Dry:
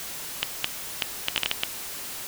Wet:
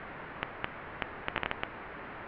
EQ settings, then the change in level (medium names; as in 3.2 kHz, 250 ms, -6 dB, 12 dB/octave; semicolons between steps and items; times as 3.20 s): inverse Chebyshev low-pass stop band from 6.2 kHz, stop band 60 dB; +2.0 dB